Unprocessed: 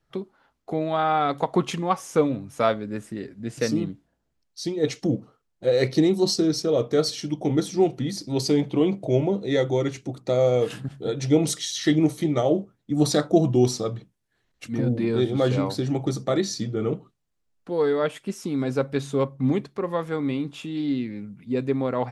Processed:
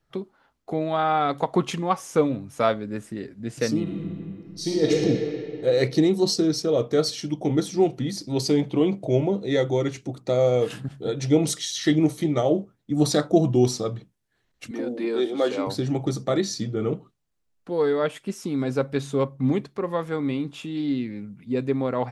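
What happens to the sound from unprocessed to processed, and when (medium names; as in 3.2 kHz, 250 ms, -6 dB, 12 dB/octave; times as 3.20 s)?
3.82–4.92 s: reverb throw, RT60 2.7 s, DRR -4.5 dB
14.71–15.67 s: high-pass 280 Hz 24 dB/octave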